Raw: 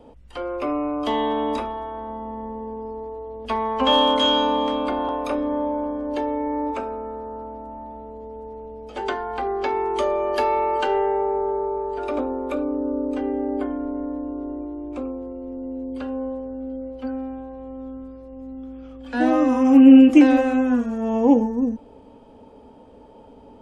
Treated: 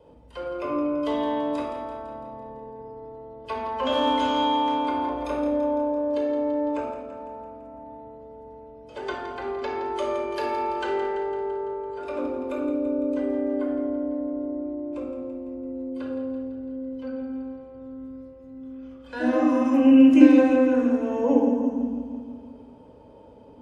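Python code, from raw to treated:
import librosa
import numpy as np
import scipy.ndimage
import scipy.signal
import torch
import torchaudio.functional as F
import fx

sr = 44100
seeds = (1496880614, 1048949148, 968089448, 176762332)

y = scipy.signal.sosfilt(scipy.signal.butter(2, 54.0, 'highpass', fs=sr, output='sos'), x)
y = fx.echo_feedback(y, sr, ms=168, feedback_pct=60, wet_db=-10.5)
y = fx.room_shoebox(y, sr, seeds[0], volume_m3=3300.0, walls='furnished', distance_m=5.0)
y = F.gain(torch.from_numpy(y), -8.0).numpy()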